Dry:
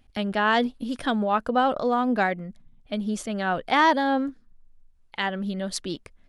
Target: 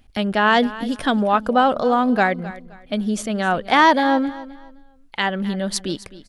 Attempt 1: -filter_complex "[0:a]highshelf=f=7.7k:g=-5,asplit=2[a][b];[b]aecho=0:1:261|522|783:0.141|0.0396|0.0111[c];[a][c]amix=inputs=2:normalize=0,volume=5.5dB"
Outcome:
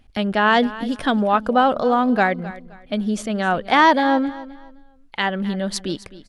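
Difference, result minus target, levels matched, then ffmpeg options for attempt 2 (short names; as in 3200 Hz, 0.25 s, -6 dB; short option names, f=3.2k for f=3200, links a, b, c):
8000 Hz band -3.0 dB
-filter_complex "[0:a]highshelf=f=7.7k:g=2,asplit=2[a][b];[b]aecho=0:1:261|522|783:0.141|0.0396|0.0111[c];[a][c]amix=inputs=2:normalize=0,volume=5.5dB"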